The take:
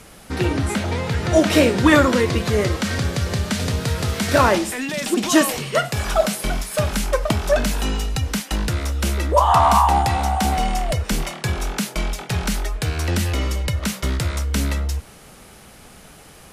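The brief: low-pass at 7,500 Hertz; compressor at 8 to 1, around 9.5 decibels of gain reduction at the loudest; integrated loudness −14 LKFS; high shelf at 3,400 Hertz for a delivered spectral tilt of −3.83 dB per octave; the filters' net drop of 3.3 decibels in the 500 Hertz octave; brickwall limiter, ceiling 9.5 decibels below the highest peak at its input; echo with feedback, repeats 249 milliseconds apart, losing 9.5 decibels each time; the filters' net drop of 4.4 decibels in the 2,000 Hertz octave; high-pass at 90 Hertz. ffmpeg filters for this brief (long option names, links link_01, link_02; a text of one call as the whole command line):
ffmpeg -i in.wav -af "highpass=90,lowpass=7500,equalizer=frequency=500:width_type=o:gain=-4,equalizer=frequency=2000:width_type=o:gain=-8,highshelf=frequency=3400:gain=8,acompressor=threshold=-21dB:ratio=8,alimiter=limit=-18.5dB:level=0:latency=1,aecho=1:1:249|498|747|996:0.335|0.111|0.0365|0.012,volume=14dB" out.wav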